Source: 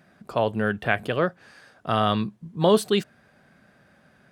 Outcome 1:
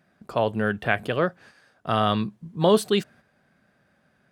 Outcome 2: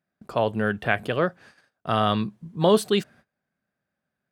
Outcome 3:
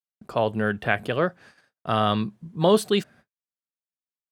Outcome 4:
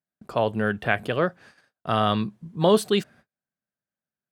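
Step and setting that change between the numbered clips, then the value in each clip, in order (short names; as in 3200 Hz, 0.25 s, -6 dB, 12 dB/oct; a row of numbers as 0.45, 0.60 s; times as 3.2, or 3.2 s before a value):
gate, range: -7, -25, -59, -38 dB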